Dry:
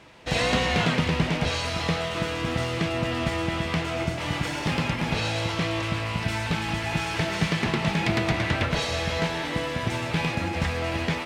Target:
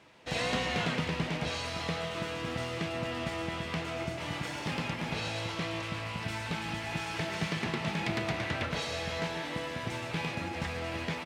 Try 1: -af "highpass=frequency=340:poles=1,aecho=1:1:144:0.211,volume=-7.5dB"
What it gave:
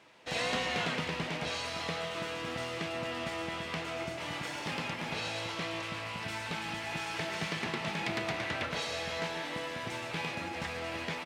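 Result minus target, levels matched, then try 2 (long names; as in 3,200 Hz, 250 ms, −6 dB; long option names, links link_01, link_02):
125 Hz band −5.0 dB
-af "highpass=frequency=110:poles=1,aecho=1:1:144:0.211,volume=-7.5dB"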